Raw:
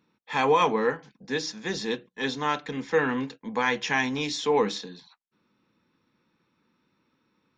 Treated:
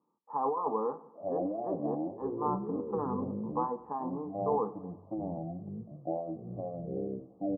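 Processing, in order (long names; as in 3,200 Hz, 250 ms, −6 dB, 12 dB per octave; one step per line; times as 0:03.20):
high-pass filter 750 Hz 6 dB per octave
compressor whose output falls as the input rises −27 dBFS, ratio −1
Chebyshev low-pass with heavy ripple 1,200 Hz, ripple 3 dB
delay with pitch and tempo change per echo 726 ms, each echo −7 semitones, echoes 2
repeating echo 92 ms, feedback 58%, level −20 dB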